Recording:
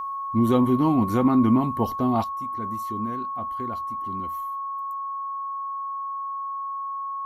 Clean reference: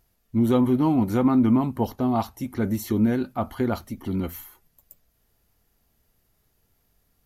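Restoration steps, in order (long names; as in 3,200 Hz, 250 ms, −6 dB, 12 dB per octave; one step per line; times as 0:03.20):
notch filter 1,100 Hz, Q 30
level correction +11 dB, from 0:02.24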